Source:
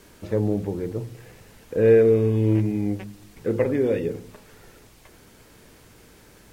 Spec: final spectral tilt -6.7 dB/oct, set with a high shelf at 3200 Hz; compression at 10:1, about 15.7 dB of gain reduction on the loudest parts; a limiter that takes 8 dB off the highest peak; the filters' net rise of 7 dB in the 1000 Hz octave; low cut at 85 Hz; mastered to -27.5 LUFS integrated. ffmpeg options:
-af "highpass=85,equalizer=f=1k:t=o:g=8.5,highshelf=f=3.2k:g=8,acompressor=threshold=-26dB:ratio=10,volume=7.5dB,alimiter=limit=-16dB:level=0:latency=1"

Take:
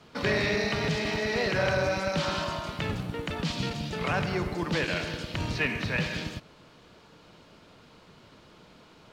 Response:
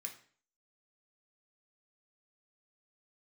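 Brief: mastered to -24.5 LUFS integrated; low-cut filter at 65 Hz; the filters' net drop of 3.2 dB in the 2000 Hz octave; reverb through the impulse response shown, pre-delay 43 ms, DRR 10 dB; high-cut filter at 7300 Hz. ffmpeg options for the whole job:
-filter_complex "[0:a]highpass=65,lowpass=7.3k,equalizer=f=2k:t=o:g=-4,asplit=2[a][b];[1:a]atrim=start_sample=2205,adelay=43[c];[b][c]afir=irnorm=-1:irlink=0,volume=-6.5dB[d];[a][d]amix=inputs=2:normalize=0,volume=5.5dB"

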